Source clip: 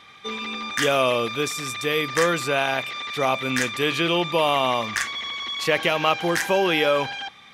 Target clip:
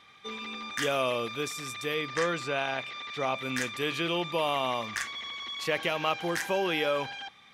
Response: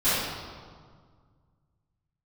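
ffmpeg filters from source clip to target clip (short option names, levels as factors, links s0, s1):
-filter_complex "[0:a]asettb=1/sr,asplit=3[s0][s1][s2];[s0]atrim=end=1.944[s3];[s1]atrim=start=1.94:end=3.38,asetpts=PTS-STARTPTS,afade=t=in:d=0.004:c=qsin,afade=t=out:st=1.436:d=0.004:c=qsin,lowpass=6600[s4];[s2]atrim=start=3.376[s5];[s3][s4]acrossfade=d=0.004:c1=hsin:c2=qsin[s6];[s6][s5]acrossfade=d=0.004:c1=qsin:c2=hsin,volume=0.398"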